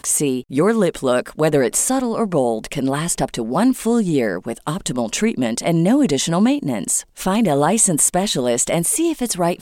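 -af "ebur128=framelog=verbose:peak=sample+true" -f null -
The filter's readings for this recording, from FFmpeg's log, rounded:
Integrated loudness:
  I:         -18.2 LUFS
  Threshold: -28.2 LUFS
Loudness range:
  LRA:         3.2 LU
  Threshold: -38.4 LUFS
  LRA low:   -20.1 LUFS
  LRA high:  -16.9 LUFS
Sample peak:
  Peak:       -3.2 dBFS
True peak:
  Peak:       -3.0 dBFS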